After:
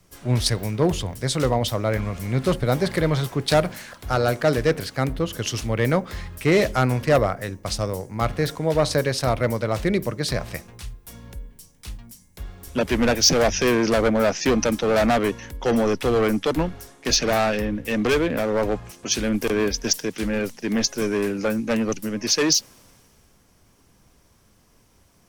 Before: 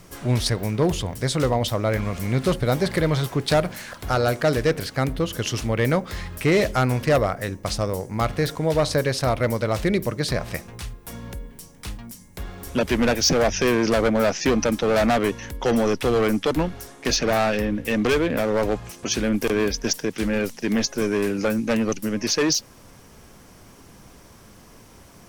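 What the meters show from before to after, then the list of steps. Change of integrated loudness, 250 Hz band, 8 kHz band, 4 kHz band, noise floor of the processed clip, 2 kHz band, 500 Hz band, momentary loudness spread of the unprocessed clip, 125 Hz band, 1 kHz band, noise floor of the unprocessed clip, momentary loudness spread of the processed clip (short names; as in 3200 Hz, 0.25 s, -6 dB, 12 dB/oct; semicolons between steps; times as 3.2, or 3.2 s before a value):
+0.5 dB, -0.5 dB, +2.5 dB, +1.5 dB, -58 dBFS, 0.0 dB, 0.0 dB, 11 LU, 0.0 dB, 0.0 dB, -48 dBFS, 11 LU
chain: three-band expander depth 40%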